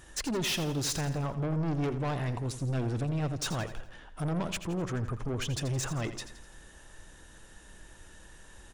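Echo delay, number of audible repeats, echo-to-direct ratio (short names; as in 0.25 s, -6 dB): 84 ms, 4, -11.0 dB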